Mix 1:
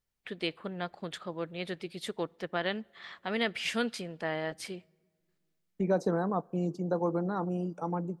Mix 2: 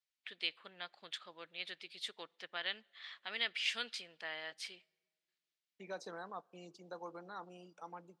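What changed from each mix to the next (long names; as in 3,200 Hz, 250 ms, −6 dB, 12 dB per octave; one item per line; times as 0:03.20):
master: add resonant band-pass 3,500 Hz, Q 1.1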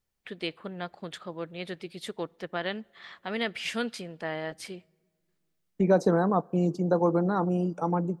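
second voice +6.0 dB
master: remove resonant band-pass 3,500 Hz, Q 1.1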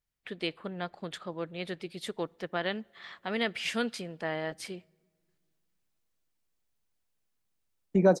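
second voice: entry +2.15 s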